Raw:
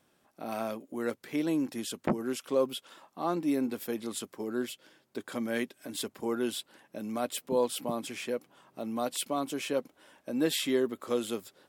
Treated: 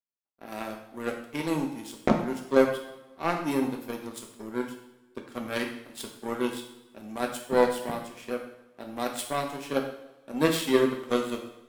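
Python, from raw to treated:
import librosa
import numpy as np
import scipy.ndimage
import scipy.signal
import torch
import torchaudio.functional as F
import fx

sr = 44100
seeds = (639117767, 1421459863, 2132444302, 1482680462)

y = fx.power_curve(x, sr, exponent=2.0)
y = fx.rev_double_slope(y, sr, seeds[0], early_s=0.67, late_s=1.8, knee_db=-18, drr_db=1.5)
y = y * librosa.db_to_amplitude(8.0)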